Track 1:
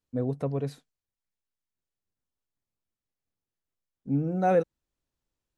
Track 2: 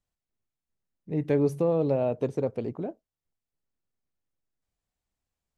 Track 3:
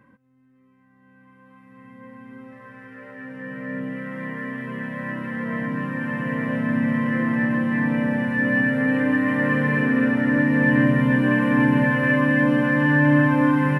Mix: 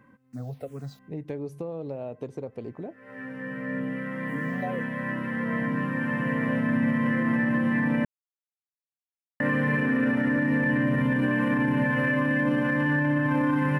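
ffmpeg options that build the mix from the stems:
ffmpeg -i stem1.wav -i stem2.wav -i stem3.wav -filter_complex "[0:a]aecho=1:1:1.5:0.49,acrusher=bits=8:mix=0:aa=0.000001,asplit=2[link_01][link_02];[link_02]afreqshift=-2.2[link_03];[link_01][link_03]amix=inputs=2:normalize=1,adelay=200,volume=-2.5dB[link_04];[1:a]volume=-3dB,asplit=2[link_05][link_06];[2:a]volume=-1dB,asplit=3[link_07][link_08][link_09];[link_07]atrim=end=8.05,asetpts=PTS-STARTPTS,afade=type=out:start_time=8.046:duration=0.004:curve=hsin[link_10];[link_08]atrim=start=8.05:end=9.4,asetpts=PTS-STARTPTS,volume=0[link_11];[link_09]atrim=start=9.4,asetpts=PTS-STARTPTS,afade=type=in:duration=0.004:curve=hsin[link_12];[link_10][link_11][link_12]concat=n=3:v=0:a=1[link_13];[link_06]apad=whole_len=608204[link_14];[link_13][link_14]sidechaincompress=threshold=-52dB:ratio=6:attack=37:release=219[link_15];[link_04][link_05]amix=inputs=2:normalize=0,acompressor=threshold=-31dB:ratio=6,volume=0dB[link_16];[link_15][link_16]amix=inputs=2:normalize=0,alimiter=limit=-16.5dB:level=0:latency=1:release=41" out.wav

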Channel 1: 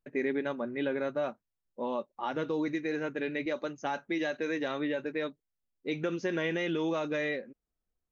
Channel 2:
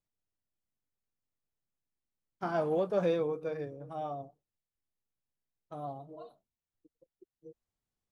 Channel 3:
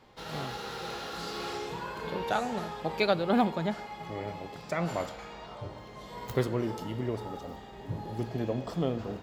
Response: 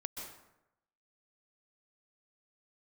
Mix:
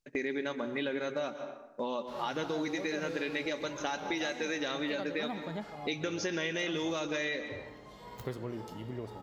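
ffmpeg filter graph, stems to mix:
-filter_complex "[0:a]agate=range=-10dB:threshold=-43dB:ratio=16:detection=peak,equalizer=frequency=5700:width_type=o:width=1.9:gain=14.5,volume=2dB,asplit=2[link_01][link_02];[link_02]volume=-4dB[link_03];[1:a]volume=-4dB[link_04];[2:a]adelay=1900,volume=-6.5dB[link_05];[3:a]atrim=start_sample=2205[link_06];[link_03][link_06]afir=irnorm=-1:irlink=0[link_07];[link_01][link_04][link_05][link_07]amix=inputs=4:normalize=0,acompressor=threshold=-34dB:ratio=3"

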